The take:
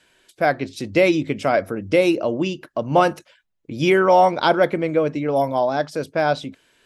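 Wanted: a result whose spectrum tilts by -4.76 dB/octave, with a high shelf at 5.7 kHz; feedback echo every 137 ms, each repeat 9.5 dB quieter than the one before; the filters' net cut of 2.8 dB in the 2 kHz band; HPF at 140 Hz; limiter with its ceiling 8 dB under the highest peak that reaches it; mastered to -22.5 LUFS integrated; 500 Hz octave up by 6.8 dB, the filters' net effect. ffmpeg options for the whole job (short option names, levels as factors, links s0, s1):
-af "highpass=140,equalizer=f=500:t=o:g=8.5,equalizer=f=2000:t=o:g=-5.5,highshelf=f=5700:g=7.5,alimiter=limit=0.447:level=0:latency=1,aecho=1:1:137|274|411|548:0.335|0.111|0.0365|0.012,volume=0.531"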